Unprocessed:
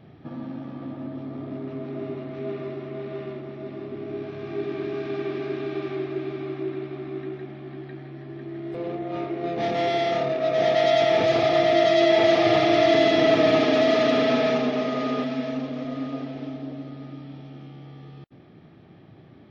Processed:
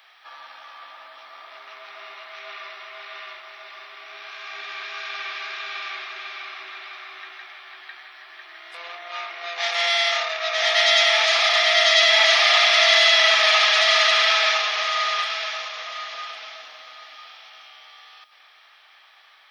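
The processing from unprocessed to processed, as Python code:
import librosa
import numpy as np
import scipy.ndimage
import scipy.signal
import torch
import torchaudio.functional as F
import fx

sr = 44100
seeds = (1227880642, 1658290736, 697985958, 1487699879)

y = scipy.signal.sosfilt(scipy.signal.cheby2(4, 80, 170.0, 'highpass', fs=sr, output='sos'), x)
y = fx.high_shelf(y, sr, hz=3000.0, db=10.0)
y = y + 10.0 ** (-13.5 / 20.0) * np.pad(y, (int(1107 * sr / 1000.0), 0))[:len(y)]
y = y * 10.0 ** (8.0 / 20.0)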